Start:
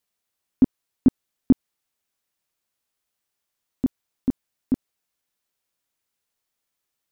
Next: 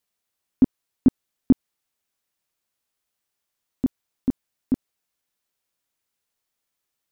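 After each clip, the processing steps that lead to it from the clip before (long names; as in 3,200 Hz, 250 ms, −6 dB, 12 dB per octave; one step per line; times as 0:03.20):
no processing that can be heard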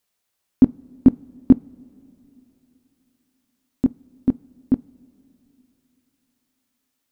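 coupled-rooms reverb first 0.25 s, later 3.5 s, from −18 dB, DRR 18 dB
level +4.5 dB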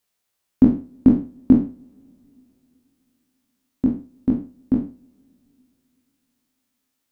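peak hold with a decay on every bin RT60 0.37 s
level −1.5 dB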